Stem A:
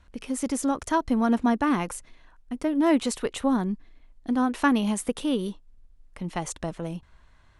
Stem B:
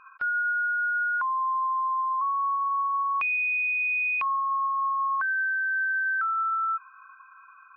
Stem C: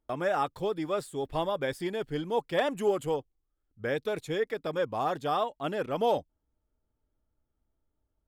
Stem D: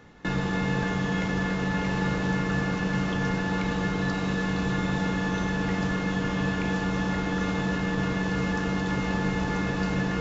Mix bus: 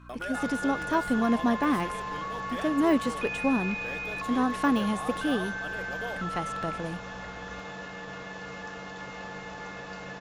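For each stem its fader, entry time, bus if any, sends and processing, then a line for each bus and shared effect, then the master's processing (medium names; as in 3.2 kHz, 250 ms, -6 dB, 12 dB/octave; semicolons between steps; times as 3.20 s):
-1.5 dB, 0.00 s, no bus, no send, de-esser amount 90%; hum 60 Hz, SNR 18 dB
-6.0 dB, 0.00 s, bus A, no send, none
-4.5 dB, 0.00 s, bus A, no send, tilt EQ +2 dB/octave
-8.5 dB, 0.10 s, no bus, no send, resonant low shelf 430 Hz -7.5 dB, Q 1.5
bus A: 0.0 dB, compression 2:1, threshold -37 dBFS, peak gain reduction 7 dB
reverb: none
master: bass shelf 120 Hz -5.5 dB; band-stop 920 Hz, Q 17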